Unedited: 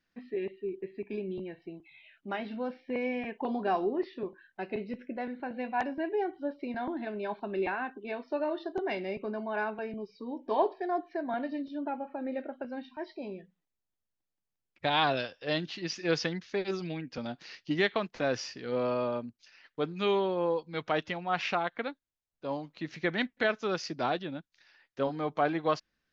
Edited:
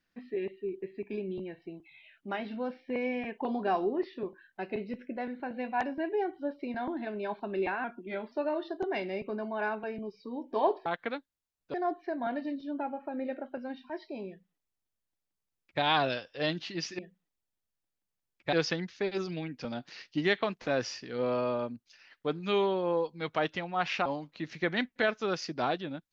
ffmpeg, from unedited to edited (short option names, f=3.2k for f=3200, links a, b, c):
-filter_complex "[0:a]asplit=8[a][b][c][d][e][f][g][h];[a]atrim=end=7.844[i];[b]atrim=start=7.84:end=8.27,asetpts=PTS-STARTPTS,asetrate=39690,aresample=44100[j];[c]atrim=start=8.266:end=10.812[k];[d]atrim=start=21.588:end=22.472[l];[e]atrim=start=10.808:end=16.062[m];[f]atrim=start=13.348:end=14.892[n];[g]atrim=start=16.058:end=21.592[o];[h]atrim=start=22.468[p];[i][j]acrossfade=d=0.004:c1=hsin:c2=hsin[q];[q][k]acrossfade=d=0.004:c1=hsin:c2=hsin[r];[r][l]acrossfade=d=0.004:c1=hsin:c2=hsin[s];[s][m]acrossfade=d=0.004:c1=hsin:c2=hsin[t];[t][n]acrossfade=d=0.004:c1=hsin:c2=hsin[u];[u][o]acrossfade=d=0.004:c1=hsin:c2=hsin[v];[v][p]acrossfade=d=0.004:c1=hsin:c2=hsin"